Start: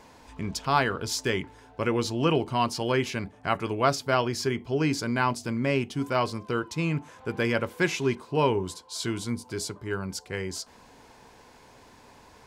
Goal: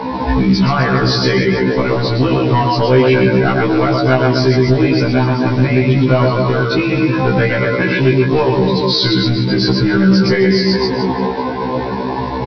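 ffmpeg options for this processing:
-filter_complex "[0:a]acompressor=threshold=-37dB:ratio=8,highpass=74,asplit=2[a][b];[b]aecho=0:1:120|258|416.7|599.2|809.1:0.631|0.398|0.251|0.158|0.1[c];[a][c]amix=inputs=2:normalize=0,volume=34.5dB,asoftclip=hard,volume=-34.5dB,afftdn=nr=17:nf=-46,aresample=11025,acrusher=bits=5:mode=log:mix=0:aa=0.000001,aresample=44100,asplit=2[d][e];[e]adelay=16,volume=-9.5dB[f];[d][f]amix=inputs=2:normalize=0,acontrast=53,alimiter=level_in=35.5dB:limit=-1dB:release=50:level=0:latency=1,afftfilt=real='re*1.73*eq(mod(b,3),0)':imag='im*1.73*eq(mod(b,3),0)':win_size=2048:overlap=0.75,volume=-3dB"

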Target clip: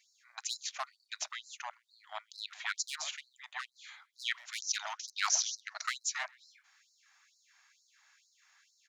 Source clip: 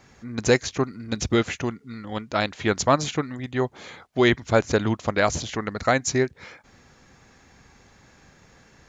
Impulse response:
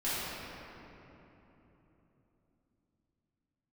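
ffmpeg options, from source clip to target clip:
-filter_complex "[0:a]asettb=1/sr,asplit=3[a][b][c];[a]atrim=end=1.294[d];[b]atrim=start=1.29:end=2.38,asetpts=PTS-STARTPTS,afade=t=in:d=0.004:c=qsin,afade=t=out:st=1.086:d=0.004:c=qsin,acrossover=split=130[e][f];[f]acompressor=threshold=-26dB:ratio=2[g];[e][g]amix=inputs=2:normalize=0[h];[c]atrim=start=2.376[i];[d][h]acrossfade=d=0.004:c1=hsin:c2=qsin[j];[j][i]acrossfade=d=0.004:c1=qsin:c2=hsin,asettb=1/sr,asplit=3[k][l][m];[k]atrim=end=4.584[n];[l]atrim=start=4.58:end=5.83,asetpts=PTS-STARTPTS,afade=t=in:d=0.004:c=qsin,afade=t=out:st=1.246:d=0.004:c=qsin,lowpass=f=5.8k:t=q:w=5.8[o];[m]atrim=start=5.826[p];[n][o]acrossfade=d=0.004:c1=hsin:c2=qsin[q];[q][p]acrossfade=d=0.004:c1=qsin:c2=hsin,acrossover=split=990[r][s];[r]acrusher=bits=3:mix=0:aa=0.5[t];[t][s]amix=inputs=2:normalize=0,asplit=2[u][v];[v]adelay=130,highpass=300,lowpass=3.4k,asoftclip=type=hard:threshold=-13dB,volume=-23dB[w];[u][w]amix=inputs=2:normalize=0,afftfilt=real='re*gte(b*sr/1024,560*pow(4000/560,0.5+0.5*sin(2*PI*2.2*pts/sr)))':imag='im*gte(b*sr/1024,560*pow(4000/560,0.5+0.5*sin(2*PI*2.2*pts/sr)))':win_size=1024:overlap=0.75,volume=-7.5dB"

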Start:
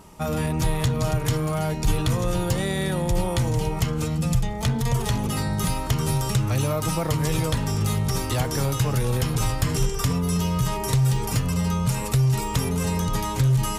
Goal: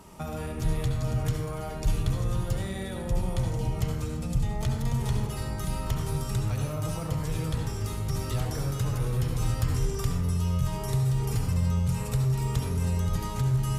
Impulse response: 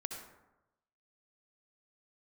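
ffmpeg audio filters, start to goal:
-filter_complex "[0:a]acrossover=split=130[a][b];[b]acompressor=threshold=-33dB:ratio=6[c];[a][c]amix=inputs=2:normalize=0[d];[1:a]atrim=start_sample=2205,asetrate=42336,aresample=44100[e];[d][e]afir=irnorm=-1:irlink=0"

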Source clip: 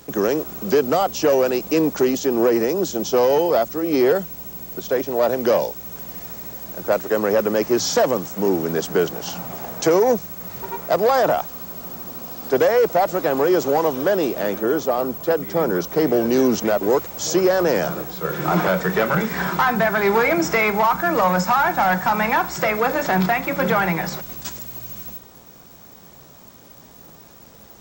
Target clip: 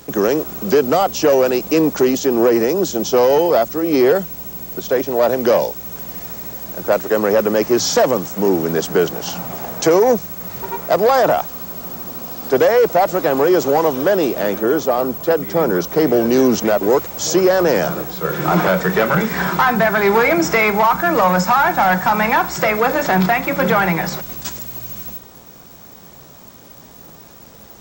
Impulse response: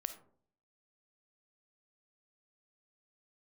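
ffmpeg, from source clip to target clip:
-af "acontrast=29,volume=-1dB"

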